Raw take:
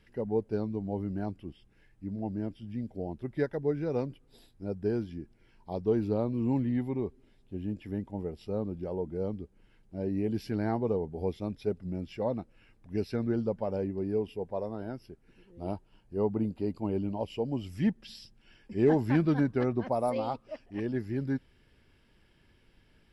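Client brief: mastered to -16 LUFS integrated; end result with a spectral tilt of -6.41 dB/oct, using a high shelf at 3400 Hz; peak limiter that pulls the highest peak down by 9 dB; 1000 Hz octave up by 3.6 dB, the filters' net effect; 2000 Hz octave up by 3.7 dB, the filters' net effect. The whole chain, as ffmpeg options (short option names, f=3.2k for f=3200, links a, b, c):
-af "equalizer=f=1k:t=o:g=4.5,equalizer=f=2k:t=o:g=4,highshelf=f=3.4k:g=-3.5,volume=18.5dB,alimiter=limit=-4dB:level=0:latency=1"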